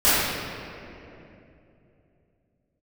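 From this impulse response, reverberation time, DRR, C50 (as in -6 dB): 2.9 s, -16.0 dB, -4.5 dB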